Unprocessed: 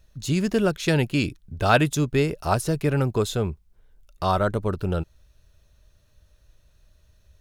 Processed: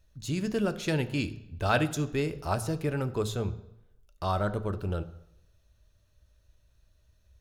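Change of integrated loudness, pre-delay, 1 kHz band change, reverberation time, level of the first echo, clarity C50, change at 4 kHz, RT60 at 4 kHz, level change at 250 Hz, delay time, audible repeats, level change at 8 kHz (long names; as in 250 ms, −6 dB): −7.0 dB, 3 ms, −7.5 dB, 0.85 s, no echo audible, 15.5 dB, −7.0 dB, 0.70 s, −6.5 dB, no echo audible, no echo audible, −7.0 dB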